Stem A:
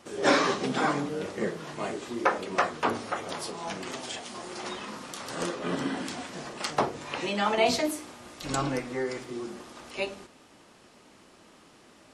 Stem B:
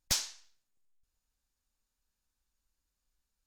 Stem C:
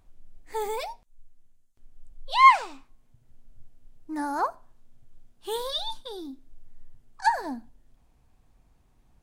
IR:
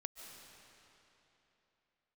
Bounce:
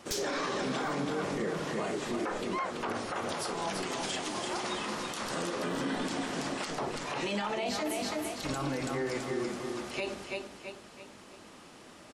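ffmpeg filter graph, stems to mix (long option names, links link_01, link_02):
-filter_complex "[0:a]alimiter=limit=-18.5dB:level=0:latency=1:release=311,volume=2.5dB,asplit=2[link_01][link_02];[link_02]volume=-6.5dB[link_03];[1:a]volume=-0.5dB[link_04];[2:a]aeval=exprs='val(0)*pow(10,-20*(0.5-0.5*cos(2*PI*4.1*n/s))/20)':channel_layout=same,adelay=150,volume=-9dB[link_05];[link_03]aecho=0:1:331|662|993|1324|1655|1986:1|0.4|0.16|0.064|0.0256|0.0102[link_06];[link_01][link_04][link_05][link_06]amix=inputs=4:normalize=0,alimiter=level_in=0.5dB:limit=-24dB:level=0:latency=1:release=53,volume=-0.5dB"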